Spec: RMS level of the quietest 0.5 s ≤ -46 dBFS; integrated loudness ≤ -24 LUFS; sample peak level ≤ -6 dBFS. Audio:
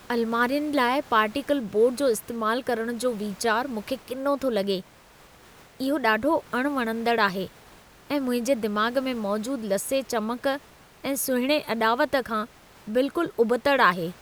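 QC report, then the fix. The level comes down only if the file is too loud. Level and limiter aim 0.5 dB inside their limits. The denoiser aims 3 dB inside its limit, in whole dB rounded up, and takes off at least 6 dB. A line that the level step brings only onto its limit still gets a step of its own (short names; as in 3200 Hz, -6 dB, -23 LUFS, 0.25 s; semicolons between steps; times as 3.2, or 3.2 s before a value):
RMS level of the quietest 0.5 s -52 dBFS: OK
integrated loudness -25.0 LUFS: OK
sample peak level -6.5 dBFS: OK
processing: none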